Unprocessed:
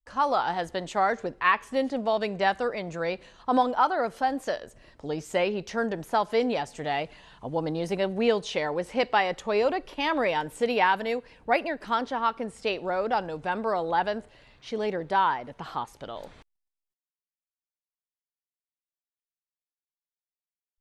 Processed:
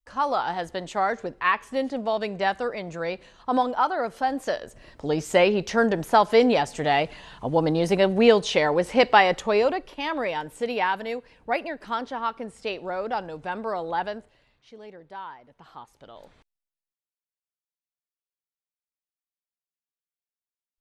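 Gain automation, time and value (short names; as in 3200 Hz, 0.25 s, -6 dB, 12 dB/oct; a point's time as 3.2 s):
4.09 s 0 dB
5.2 s +7 dB
9.33 s +7 dB
9.97 s -2 dB
14.05 s -2 dB
14.77 s -15 dB
15.35 s -15 dB
16.24 s -7 dB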